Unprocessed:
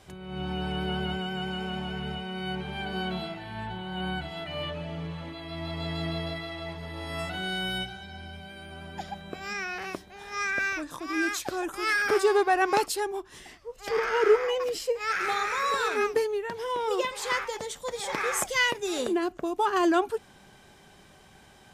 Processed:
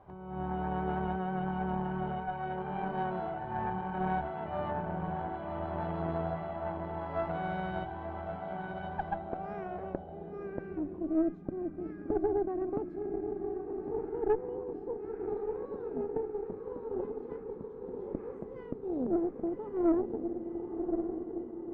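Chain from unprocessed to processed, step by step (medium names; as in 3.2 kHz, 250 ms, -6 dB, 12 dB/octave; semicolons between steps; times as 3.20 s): echo that smears into a reverb 1123 ms, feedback 62%, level -5 dB; low-pass sweep 930 Hz -> 270 Hz, 8.94–11.43 s; valve stage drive 20 dB, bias 0.75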